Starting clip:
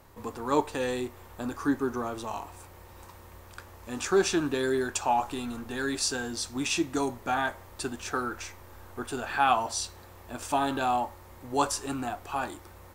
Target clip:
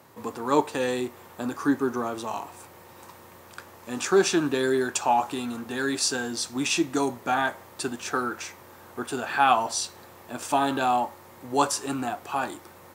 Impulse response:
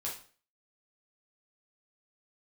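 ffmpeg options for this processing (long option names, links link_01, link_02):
-af "highpass=frequency=120:width=0.5412,highpass=frequency=120:width=1.3066,volume=3.5dB"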